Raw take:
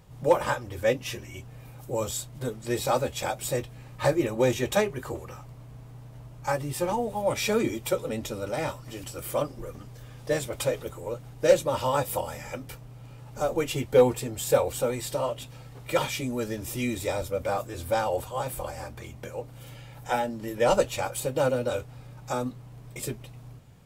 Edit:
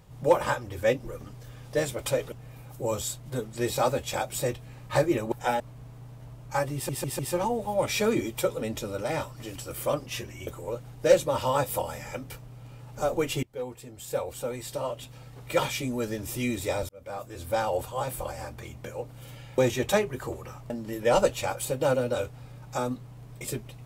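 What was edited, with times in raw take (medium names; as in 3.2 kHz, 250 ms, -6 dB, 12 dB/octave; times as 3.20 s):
1.00–1.41 s: swap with 9.54–10.86 s
4.41–5.53 s: swap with 19.97–20.25 s
6.67 s: stutter 0.15 s, 4 plays
13.82–15.96 s: fade in, from -23 dB
17.28–18.31 s: fade in equal-power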